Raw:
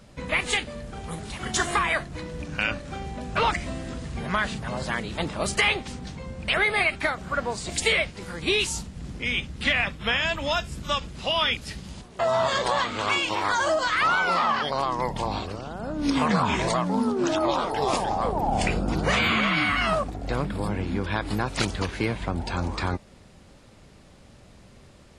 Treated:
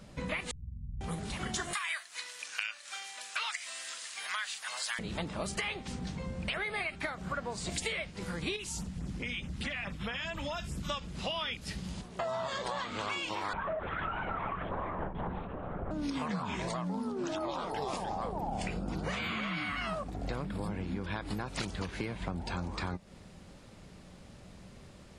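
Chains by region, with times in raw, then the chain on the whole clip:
0:00.51–0:01.01: inverse Chebyshev low-pass filter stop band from 770 Hz, stop band 80 dB + flutter between parallel walls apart 8.1 metres, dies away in 0.56 s
0:01.73–0:04.99: high-pass filter 1,300 Hz + spectral tilt +3.5 dB per octave
0:08.56–0:10.90: auto-filter notch sine 4.7 Hz 420–4,600 Hz + downward compressor 2.5 to 1, threshold −30 dBFS
0:13.53–0:15.91: lower of the sound and its delayed copy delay 4.5 ms + low-pass filter 1,500 Hz + linear-prediction vocoder at 8 kHz whisper
whole clip: parametric band 180 Hz +6 dB 0.26 octaves; downward compressor 6 to 1, threshold −31 dBFS; level −2 dB

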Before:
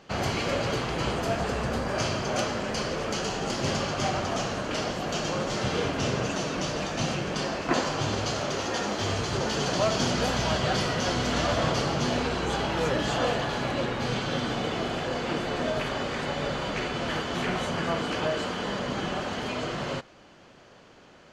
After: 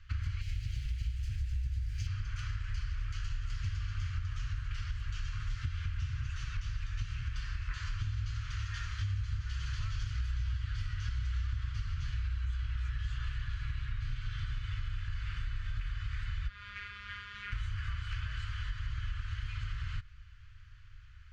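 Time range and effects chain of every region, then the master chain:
0:00.41–0:02.07: drawn EQ curve 120 Hz 0 dB, 270 Hz +9 dB, 520 Hz −9 dB, 1,000 Hz −24 dB, 2,100 Hz −2 dB, 6,200 Hz +5 dB + centre clipping without the shift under −34.5 dBFS
0:16.48–0:17.52: comb filter 4.8 ms, depth 44% + phases set to zero 204 Hz + band-pass filter 110–4,800 Hz
whole clip: inverse Chebyshev band-stop filter 170–840 Hz, stop band 40 dB; spectral tilt −4.5 dB per octave; downward compressor 5 to 1, threshold −30 dBFS; level −2.5 dB

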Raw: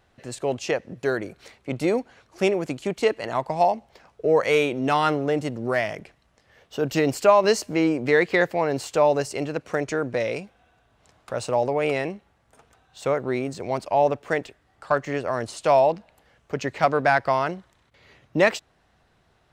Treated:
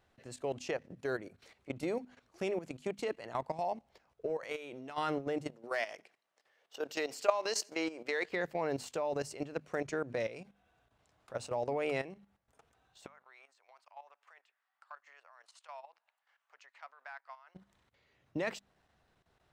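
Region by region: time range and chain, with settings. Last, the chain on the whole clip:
0:04.26–0:04.98: low-shelf EQ 230 Hz −8.5 dB + downward compressor 10 to 1, threshold −22 dBFS
0:05.48–0:08.29: high-pass filter 460 Hz + dynamic equaliser 5,100 Hz, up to +6 dB, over −44 dBFS, Q 0.9 + repeating echo 87 ms, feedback 31%, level −24 dB
0:13.06–0:17.55: high-pass filter 1,000 Hz 24 dB per octave + spectral tilt −3 dB per octave + downward compressor 1.5 to 1, threshold −57 dBFS
whole clip: mains-hum notches 50/100/150/200/250 Hz; output level in coarse steps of 13 dB; level −7.5 dB

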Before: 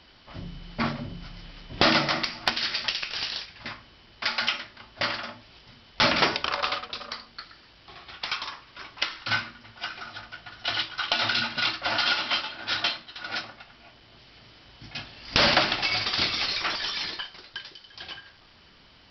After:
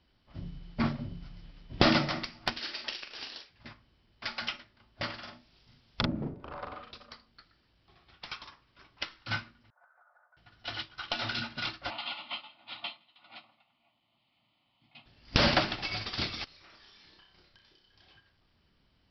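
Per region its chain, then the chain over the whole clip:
0:02.59–0:03.51: low shelf with overshoot 210 Hz −12.5 dB, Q 1.5 + double-tracking delay 43 ms −6 dB
0:05.18–0:06.91: treble cut that deepens with the level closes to 300 Hz, closed at −20.5 dBFS + high-shelf EQ 4,100 Hz +10.5 dB + double-tracking delay 41 ms −3 dB
0:09.70–0:10.37: elliptic band-pass filter 560–1,600 Hz + downward compressor 12 to 1, threshold −41 dBFS
0:11.90–0:15.06: high-pass filter 260 Hz + phaser with its sweep stopped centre 1,600 Hz, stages 6 + single-tap delay 164 ms −22 dB
0:16.44–0:18.14: downward compressor 4 to 1, threshold −41 dBFS + flutter between parallel walls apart 5.3 metres, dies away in 0.41 s
whole clip: low-shelf EQ 360 Hz +10.5 dB; expander for the loud parts 1.5 to 1, over −43 dBFS; level −4.5 dB

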